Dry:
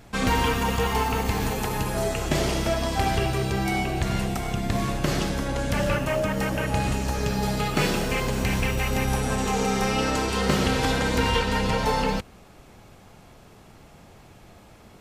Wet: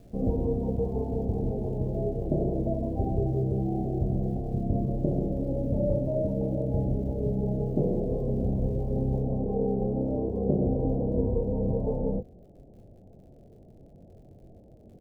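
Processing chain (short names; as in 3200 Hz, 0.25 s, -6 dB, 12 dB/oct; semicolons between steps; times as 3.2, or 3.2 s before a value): steep low-pass 660 Hz 48 dB/oct; crackle 600/s -55 dBFS, from 9.23 s 62/s; doubler 22 ms -8.5 dB; gain -1.5 dB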